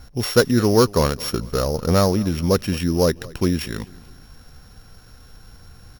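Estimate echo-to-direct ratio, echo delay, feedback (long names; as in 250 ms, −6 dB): −21.5 dB, 218 ms, 46%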